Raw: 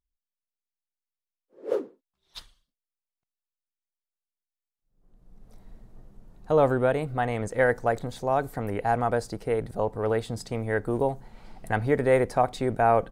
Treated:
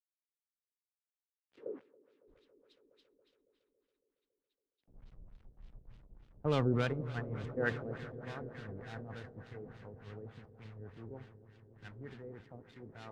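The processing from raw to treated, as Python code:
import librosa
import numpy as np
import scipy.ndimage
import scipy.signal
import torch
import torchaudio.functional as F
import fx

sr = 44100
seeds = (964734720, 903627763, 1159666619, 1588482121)

p1 = fx.dead_time(x, sr, dead_ms=0.068)
p2 = fx.doppler_pass(p1, sr, speed_mps=12, closest_m=8.9, pass_at_s=4.0)
p3 = fx.recorder_agc(p2, sr, target_db=-44.5, rise_db_per_s=5.1, max_gain_db=30)
p4 = fx.highpass(p3, sr, hz=78.0, slope=6)
p5 = fx.tone_stack(p4, sr, knobs='6-0-2')
p6 = fx.level_steps(p5, sr, step_db=15)
p7 = p5 + F.gain(torch.from_numpy(p6), 1.5).numpy()
p8 = fx.quant_dither(p7, sr, seeds[0], bits=12, dither='none')
p9 = p8 + fx.echo_swell(p8, sr, ms=139, loudest=5, wet_db=-15, dry=0)
p10 = fx.filter_lfo_lowpass(p9, sr, shape='sine', hz=3.4, low_hz=440.0, high_hz=3600.0, q=1.5)
p11 = fx.band_widen(p10, sr, depth_pct=70)
y = F.gain(torch.from_numpy(p11), 14.5).numpy()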